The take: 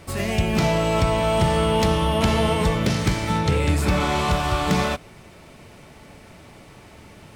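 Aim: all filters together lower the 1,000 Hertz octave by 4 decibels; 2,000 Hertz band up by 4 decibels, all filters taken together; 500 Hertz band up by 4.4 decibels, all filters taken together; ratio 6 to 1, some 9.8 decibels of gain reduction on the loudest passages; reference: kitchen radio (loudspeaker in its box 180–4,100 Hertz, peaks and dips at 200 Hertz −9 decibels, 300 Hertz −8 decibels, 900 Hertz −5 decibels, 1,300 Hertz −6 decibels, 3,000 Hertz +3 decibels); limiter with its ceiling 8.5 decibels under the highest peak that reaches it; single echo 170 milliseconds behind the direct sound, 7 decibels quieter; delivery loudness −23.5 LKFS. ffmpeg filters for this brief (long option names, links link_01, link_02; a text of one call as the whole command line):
ffmpeg -i in.wav -af "equalizer=frequency=500:width_type=o:gain=8.5,equalizer=frequency=1000:width_type=o:gain=-5,equalizer=frequency=2000:width_type=o:gain=6,acompressor=threshold=-24dB:ratio=6,alimiter=limit=-23dB:level=0:latency=1,highpass=180,equalizer=frequency=200:width_type=q:width=4:gain=-9,equalizer=frequency=300:width_type=q:width=4:gain=-8,equalizer=frequency=900:width_type=q:width=4:gain=-5,equalizer=frequency=1300:width_type=q:width=4:gain=-6,equalizer=frequency=3000:width_type=q:width=4:gain=3,lowpass=frequency=4100:width=0.5412,lowpass=frequency=4100:width=1.3066,aecho=1:1:170:0.447,volume=10.5dB" out.wav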